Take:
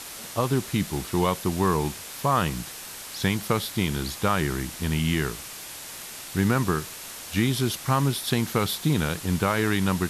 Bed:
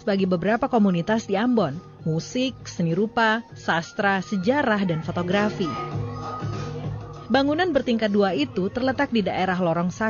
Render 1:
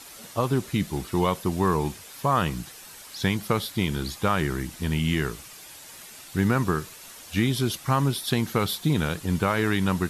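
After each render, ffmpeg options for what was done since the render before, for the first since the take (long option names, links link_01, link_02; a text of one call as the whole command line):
ffmpeg -i in.wav -af "afftdn=noise_reduction=8:noise_floor=-40" out.wav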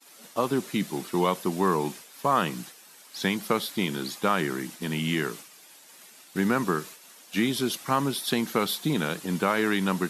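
ffmpeg -i in.wav -af "highpass=frequency=180:width=0.5412,highpass=frequency=180:width=1.3066,agate=range=-33dB:threshold=-38dB:ratio=3:detection=peak" out.wav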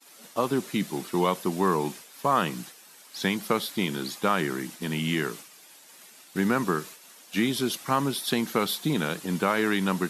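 ffmpeg -i in.wav -af anull out.wav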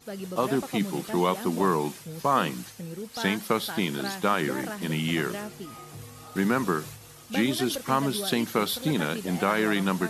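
ffmpeg -i in.wav -i bed.wav -filter_complex "[1:a]volume=-15dB[link_01];[0:a][link_01]amix=inputs=2:normalize=0" out.wav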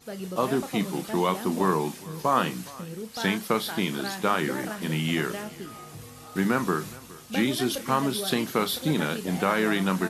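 ffmpeg -i in.wav -filter_complex "[0:a]asplit=2[link_01][link_02];[link_02]adelay=32,volume=-11dB[link_03];[link_01][link_03]amix=inputs=2:normalize=0,aecho=1:1:415:0.0841" out.wav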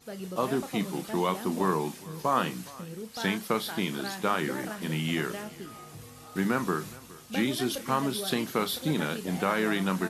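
ffmpeg -i in.wav -af "volume=-3dB" out.wav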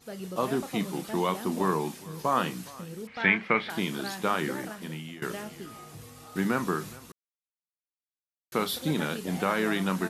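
ffmpeg -i in.wav -filter_complex "[0:a]asettb=1/sr,asplit=3[link_01][link_02][link_03];[link_01]atrim=end=3.074[link_04];[link_02]atrim=start=3.07:end=3.7,asetpts=PTS-STARTPTS,afade=type=in:duration=0.004:curve=qsin,afade=type=out:start_time=0.626:duration=0.004:curve=qsin,lowpass=frequency=2200:width_type=q:width=5.1[link_05];[link_03]atrim=start=3.696[link_06];[link_04][link_05]acrossfade=duration=0.004:curve1=hsin:curve2=qsin[link_07];[link_07][link_06]acrossfade=duration=0.004:curve1=qsin:curve2=hsin,asplit=4[link_08][link_09][link_10][link_11];[link_08]atrim=end=5.22,asetpts=PTS-STARTPTS,afade=type=out:start_time=4.49:duration=0.73:silence=0.105925[link_12];[link_09]atrim=start=5.22:end=7.12,asetpts=PTS-STARTPTS,afade=type=in:duration=0.004:curve=hsin:silence=0.105925,afade=type=out:start_time=1.896:duration=0.004:curve=hsin[link_13];[link_10]atrim=start=7.12:end=8.52,asetpts=PTS-STARTPTS,volume=0[link_14];[link_11]atrim=start=8.52,asetpts=PTS-STARTPTS,afade=type=in:duration=0.004:curve=hsin[link_15];[link_12][link_13][link_14][link_15]concat=n=4:v=0:a=1" out.wav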